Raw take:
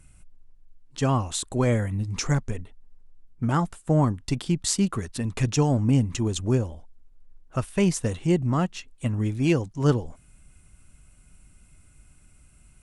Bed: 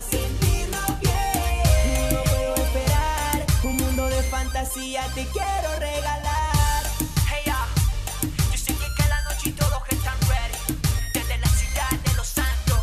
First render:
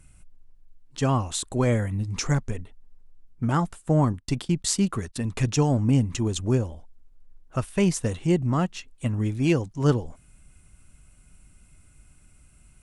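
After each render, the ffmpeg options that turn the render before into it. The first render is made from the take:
-filter_complex "[0:a]asettb=1/sr,asplit=3[a][b][c];[a]atrim=end=4.134[d];[b]atrim=start=4.13:end=5.26,asetpts=PTS-STARTPTS,afade=t=in:d=0.004:c=qsin,afade=t=out:st=1.126:d=0.004:c=qsin,agate=range=-17dB:threshold=-40dB:ratio=16:release=100:detection=peak[e];[c]atrim=start=5.256[f];[d][e]acrossfade=d=0.004:c1=hsin:c2=qsin[g];[g][f]acrossfade=d=0.004:c1=qsin:c2=hsin"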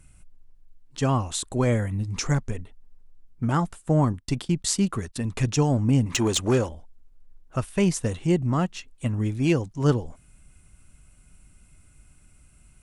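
-filter_complex "[0:a]asettb=1/sr,asplit=3[a][b][c];[a]atrim=end=6.064[d];[b]atrim=start=6.06:end=6.69,asetpts=PTS-STARTPTS,afade=t=in:d=0.004:c=qsin,afade=t=out:st=0.626:d=0.004:c=qsin,asplit=2[e][f];[f]highpass=f=720:p=1,volume=18dB,asoftclip=type=tanh:threshold=-11dB[g];[e][g]amix=inputs=2:normalize=0,lowpass=f=6.9k:p=1,volume=-6dB[h];[c]atrim=start=6.686[i];[d][h]acrossfade=d=0.004:c1=hsin:c2=qsin[j];[j][i]acrossfade=d=0.004:c1=qsin:c2=hsin"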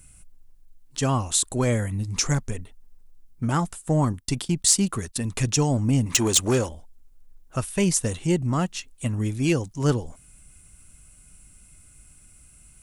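-af "asoftclip=type=tanh:threshold=-9.5dB,crystalizer=i=2:c=0"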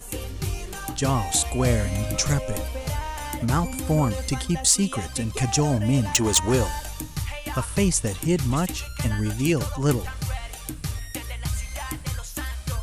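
-filter_complex "[1:a]volume=-8dB[a];[0:a][a]amix=inputs=2:normalize=0"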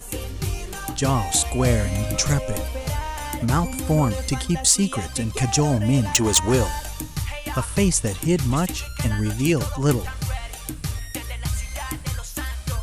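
-af "volume=2dB,alimiter=limit=-1dB:level=0:latency=1"

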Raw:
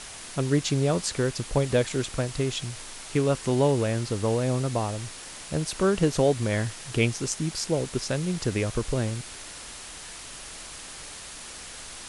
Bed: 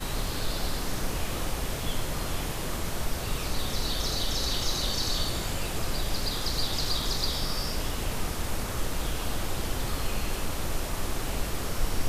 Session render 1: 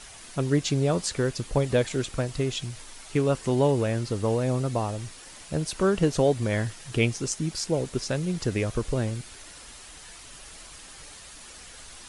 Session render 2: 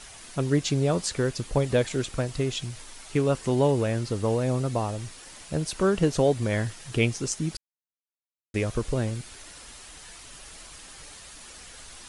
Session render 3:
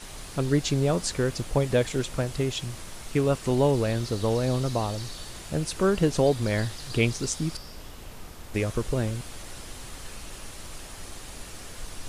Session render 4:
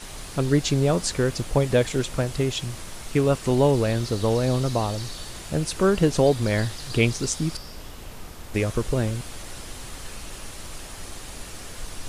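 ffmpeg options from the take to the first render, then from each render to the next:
-af "afftdn=nr=7:nf=-42"
-filter_complex "[0:a]asplit=3[a][b][c];[a]atrim=end=7.57,asetpts=PTS-STARTPTS,afade=t=out:st=7.566:d=0.004:c=hsin[d];[b]atrim=start=7.57:end=8.54,asetpts=PTS-STARTPTS,volume=0[e];[c]atrim=start=8.54,asetpts=PTS-STARTPTS,afade=t=in:d=0.004:c=hsin[f];[d][e][f]concat=n=3:v=0:a=1"
-filter_complex "[1:a]volume=-12dB[a];[0:a][a]amix=inputs=2:normalize=0"
-af "volume=3dB"

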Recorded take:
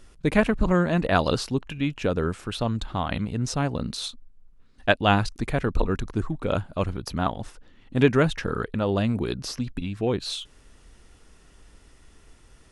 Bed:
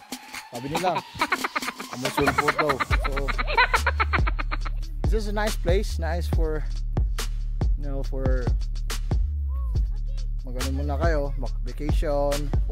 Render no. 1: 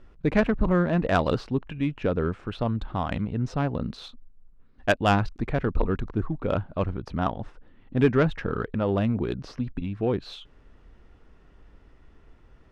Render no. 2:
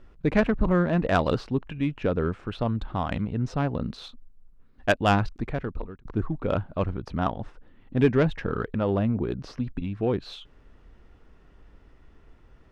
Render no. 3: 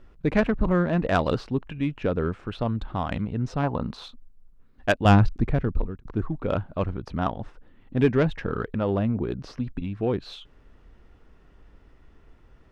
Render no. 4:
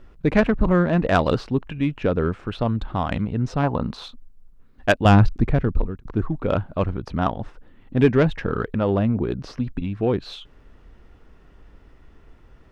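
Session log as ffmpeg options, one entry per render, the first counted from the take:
-af "adynamicsmooth=sensitivity=0.5:basefreq=2.3k,asoftclip=type=tanh:threshold=-8.5dB"
-filter_complex "[0:a]asettb=1/sr,asplit=3[a][b][c];[a]atrim=end=7.994[d];[b]atrim=start=7.99:end=8.45,asetpts=PTS-STARTPTS,afade=t=in:d=0.004:c=qsin,afade=t=out:st=0.456:d=0.004:c=qsin,equalizer=f=1.3k:w=3.8:g=-5.5[e];[c]atrim=start=8.446[f];[d][e]acrossfade=d=0.004:c1=hsin:c2=qsin[g];[g][f]acrossfade=d=0.004:c1=qsin:c2=hsin,asettb=1/sr,asplit=3[h][i][j];[h]atrim=end=8.974[k];[i]atrim=start=8.97:end=9.38,asetpts=PTS-STARTPTS,afade=t=in:d=0.004:c=qsin,afade=t=out:st=0.406:d=0.004:c=qsin,highshelf=f=2.3k:g=-9.5[l];[j]atrim=start=9.376[m];[k][l]acrossfade=d=0.004:c1=hsin:c2=qsin[n];[n][m]acrossfade=d=0.004:c1=qsin:c2=hsin,asplit=2[o][p];[o]atrim=end=6.05,asetpts=PTS-STARTPTS,afade=t=out:st=5.29:d=0.76[q];[p]atrim=start=6.05,asetpts=PTS-STARTPTS,afade=t=in:d=0.004:c=hsin[r];[q][r]concat=n=2:v=0:a=1"
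-filter_complex "[0:a]asettb=1/sr,asplit=3[a][b][c];[a]atrim=end=3.634[d];[b]atrim=start=3.63:end=4.04,asetpts=PTS-STARTPTS,afade=t=in:d=0.004:c=qsin,afade=t=out:st=0.406:d=0.004:c=qsin,equalizer=f=940:t=o:w=0.81:g=10.5[e];[c]atrim=start=4.036[f];[d][e]acrossfade=d=0.004:c1=hsin:c2=qsin[g];[g][f]acrossfade=d=0.004:c1=qsin:c2=hsin,asettb=1/sr,asplit=3[h][i][j];[h]atrim=end=5.054[k];[i]atrim=start=5.05:end=6,asetpts=PTS-STARTPTS,afade=t=in:d=0.004:c=qsin,afade=t=out:st=0.946:d=0.004:c=qsin,lowshelf=f=320:g=9.5[l];[j]atrim=start=5.996[m];[k][l]acrossfade=d=0.004:c1=hsin:c2=qsin[n];[n][m]acrossfade=d=0.004:c1=qsin:c2=hsin"
-af "volume=4dB,alimiter=limit=-3dB:level=0:latency=1"

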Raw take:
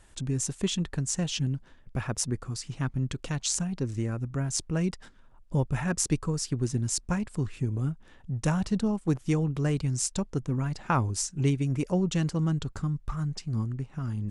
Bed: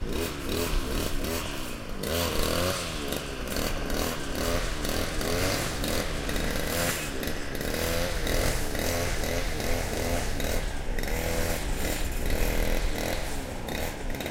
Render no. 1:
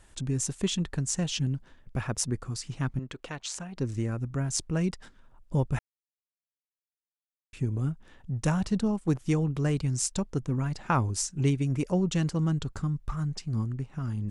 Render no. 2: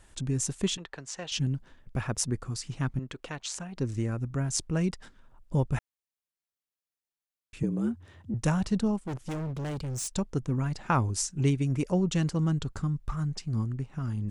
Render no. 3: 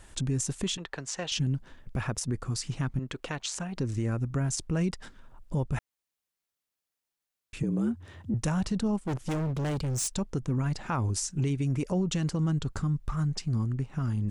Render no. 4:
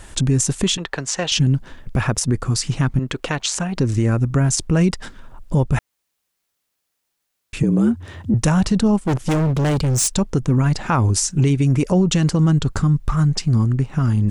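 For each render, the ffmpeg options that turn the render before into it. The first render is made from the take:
-filter_complex "[0:a]asettb=1/sr,asplit=3[a][b][c];[a]atrim=end=2.994[d];[b]atrim=start=2.99:end=3.77,asetpts=PTS-STARTPTS,afade=t=in:d=0.004:c=qsin,afade=t=out:st=0.776:d=0.004:c=qsin,bass=f=250:g=-13,treble=f=4k:g=-10[e];[c]atrim=start=3.766[f];[d][e]acrossfade=d=0.004:c1=hsin:c2=qsin[g];[g][f]acrossfade=d=0.004:c1=qsin:c2=hsin,asplit=3[h][i][j];[h]atrim=end=5.79,asetpts=PTS-STARTPTS,afade=t=out:st=5.786:d=0.004:c=hsin[k];[i]atrim=start=5.79:end=7.53,asetpts=PTS-STARTPTS,volume=0[l];[j]atrim=start=7.53,asetpts=PTS-STARTPTS,afade=t=in:d=0.004:c=hsin[m];[k][l][m]concat=n=3:v=0:a=1"
-filter_complex "[0:a]asettb=1/sr,asplit=3[a][b][c];[a]atrim=end=0.774[d];[b]atrim=start=0.77:end=1.32,asetpts=PTS-STARTPTS,afade=t=in:d=0.004:c=qsin,afade=t=out:st=0.546:d=0.004:c=qsin,acrossover=split=410 5400:gain=0.112 1 0.112[e][f][g];[e][f][g]amix=inputs=3:normalize=0[h];[c]atrim=start=1.316[i];[d][h]acrossfade=d=0.004:c1=hsin:c2=qsin[j];[j][i]acrossfade=d=0.004:c1=qsin:c2=hsin,asettb=1/sr,asplit=3[k][l][m];[k]atrim=end=7.634[n];[l]atrim=start=7.63:end=8.34,asetpts=PTS-STARTPTS,afade=t=in:d=0.004:c=qsin,afade=t=out:st=0.706:d=0.004:c=qsin,afreqshift=75[o];[m]atrim=start=8.336[p];[n][o]acrossfade=d=0.004:c1=hsin:c2=qsin[q];[q][p]acrossfade=d=0.004:c1=qsin:c2=hsin,asettb=1/sr,asplit=3[r][s][t];[r]atrim=end=9.064[u];[s]atrim=start=9.06:end=10.15,asetpts=PTS-STARTPTS,afade=t=in:d=0.004:c=qsin,afade=t=out:st=1.086:d=0.004:c=qsin,volume=31.5dB,asoftclip=hard,volume=-31.5dB[v];[t]atrim=start=10.146[w];[u][v]acrossfade=d=0.004:c1=hsin:c2=qsin[x];[x][w]acrossfade=d=0.004:c1=qsin:c2=hsin"
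-filter_complex "[0:a]asplit=2[a][b];[b]acompressor=threshold=-36dB:ratio=6,volume=-2dB[c];[a][c]amix=inputs=2:normalize=0,alimiter=limit=-20.5dB:level=0:latency=1:release=54"
-af "volume=12dB"

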